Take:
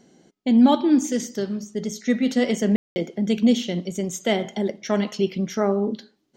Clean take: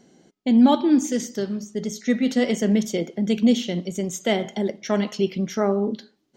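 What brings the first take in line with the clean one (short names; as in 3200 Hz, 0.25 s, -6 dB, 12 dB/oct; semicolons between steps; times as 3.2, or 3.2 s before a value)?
room tone fill 2.76–2.96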